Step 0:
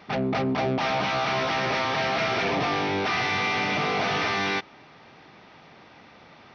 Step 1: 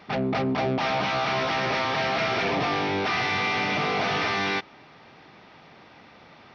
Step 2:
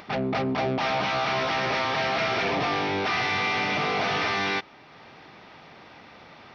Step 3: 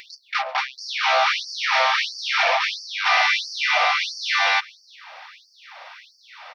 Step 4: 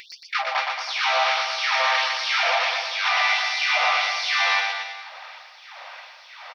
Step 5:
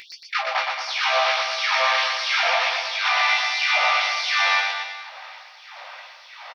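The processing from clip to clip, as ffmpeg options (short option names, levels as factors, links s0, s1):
-af "bandreject=f=6000:w=26"
-af "equalizer=f=180:w=0.65:g=-2,acompressor=mode=upward:threshold=0.00794:ratio=2.5"
-af "aecho=1:1:361:0.075,afftfilt=real='re*gte(b*sr/1024,500*pow(4500/500,0.5+0.5*sin(2*PI*1.5*pts/sr)))':imag='im*gte(b*sr/1024,500*pow(4500/500,0.5+0.5*sin(2*PI*1.5*pts/sr)))':win_size=1024:overlap=0.75,volume=2.66"
-af "alimiter=limit=0.224:level=0:latency=1:release=440,aecho=1:1:120|228|325.2|412.7|491.4:0.631|0.398|0.251|0.158|0.1"
-filter_complex "[0:a]asplit=2[s0][s1];[s1]adelay=17,volume=0.473[s2];[s0][s2]amix=inputs=2:normalize=0"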